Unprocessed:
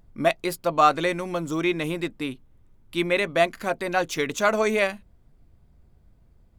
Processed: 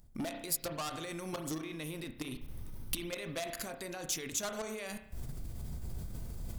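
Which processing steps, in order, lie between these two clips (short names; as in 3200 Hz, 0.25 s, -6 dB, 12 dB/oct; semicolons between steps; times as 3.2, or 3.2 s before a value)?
recorder AGC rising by 60 dB/s; 1.2–3.44 bell 7300 Hz -12 dB 0.25 oct; level quantiser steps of 19 dB; soft clip -23.5 dBFS, distortion -7 dB; reverb RT60 0.70 s, pre-delay 32 ms, DRR 8.5 dB; limiter -29 dBFS, peak gain reduction 9 dB; tone controls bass +3 dB, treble +15 dB; gain -4.5 dB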